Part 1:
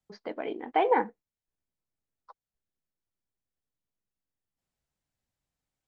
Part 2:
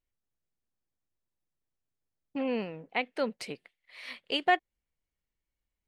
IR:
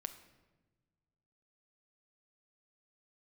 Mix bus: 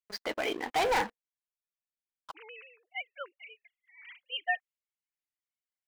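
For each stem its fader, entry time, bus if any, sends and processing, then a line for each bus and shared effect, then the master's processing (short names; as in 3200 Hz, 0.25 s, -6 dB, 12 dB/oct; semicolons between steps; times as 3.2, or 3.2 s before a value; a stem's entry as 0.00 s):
-11.0 dB, 0.00 s, no send, tilt shelf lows -9 dB, about 890 Hz; sample leveller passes 5
0.0 dB, 0.00 s, no send, sine-wave speech; HPF 1400 Hz 12 dB/oct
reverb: off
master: dry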